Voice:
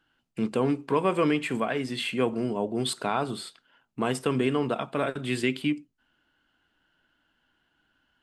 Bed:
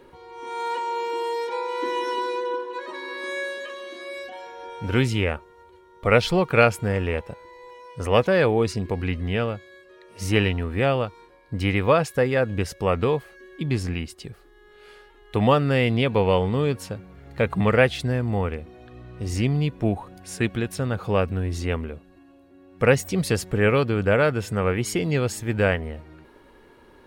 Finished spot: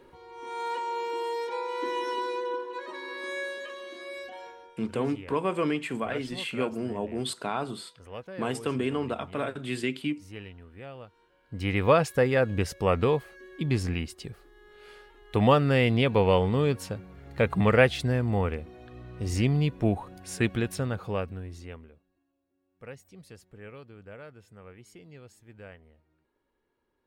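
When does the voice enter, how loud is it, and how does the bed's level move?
4.40 s, -3.5 dB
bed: 4.48 s -4.5 dB
4.84 s -22 dB
10.92 s -22 dB
11.86 s -2 dB
20.71 s -2 dB
22.32 s -26 dB

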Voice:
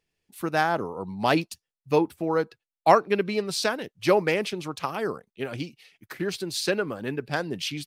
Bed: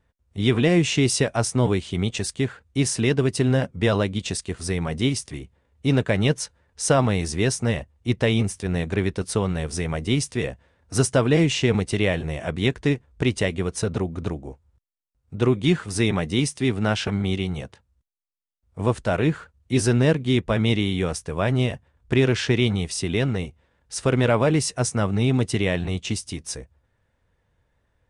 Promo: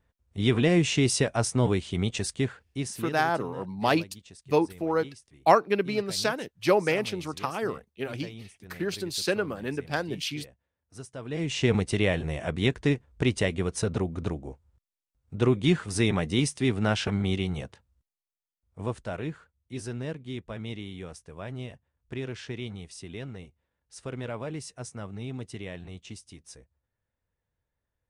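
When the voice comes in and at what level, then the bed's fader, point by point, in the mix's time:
2.60 s, -1.5 dB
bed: 2.48 s -3.5 dB
3.41 s -22.5 dB
11.13 s -22.5 dB
11.65 s -3 dB
18.04 s -3 dB
19.64 s -16 dB

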